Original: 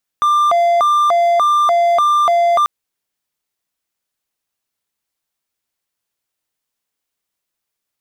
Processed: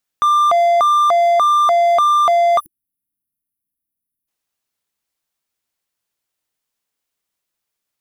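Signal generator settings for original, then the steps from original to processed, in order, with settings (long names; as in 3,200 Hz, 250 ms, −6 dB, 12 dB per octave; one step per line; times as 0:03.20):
siren hi-lo 689–1,190 Hz 1.7 per second triangle −8 dBFS 2.44 s
time-frequency box erased 0:02.59–0:04.28, 330–9,400 Hz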